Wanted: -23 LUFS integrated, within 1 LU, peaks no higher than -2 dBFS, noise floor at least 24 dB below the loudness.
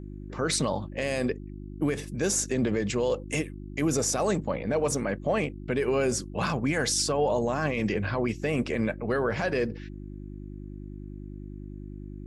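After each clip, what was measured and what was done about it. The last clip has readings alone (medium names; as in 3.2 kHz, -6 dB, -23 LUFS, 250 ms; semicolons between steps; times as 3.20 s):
hum 50 Hz; highest harmonic 350 Hz; hum level -37 dBFS; loudness -28.0 LUFS; peak level -15.5 dBFS; loudness target -23.0 LUFS
-> de-hum 50 Hz, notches 7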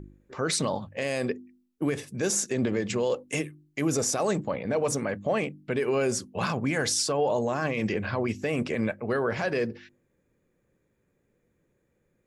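hum not found; loudness -28.0 LUFS; peak level -16.0 dBFS; loudness target -23.0 LUFS
-> trim +5 dB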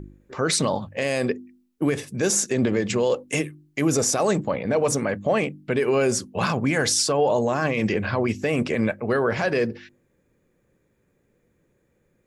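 loudness -23.5 LUFS; peak level -11.0 dBFS; noise floor -68 dBFS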